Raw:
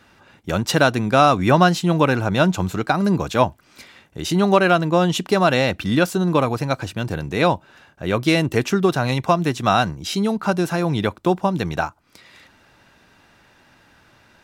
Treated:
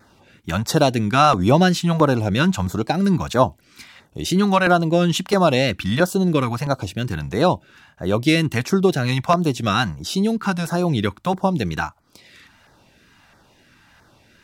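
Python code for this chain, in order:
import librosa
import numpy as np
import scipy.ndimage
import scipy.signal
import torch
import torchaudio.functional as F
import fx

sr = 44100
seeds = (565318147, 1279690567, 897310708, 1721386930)

y = fx.wow_flutter(x, sr, seeds[0], rate_hz=2.1, depth_cents=48.0)
y = fx.filter_lfo_notch(y, sr, shape='saw_down', hz=1.5, low_hz=280.0, high_hz=3100.0, q=0.92)
y = y * librosa.db_to_amplitude(1.5)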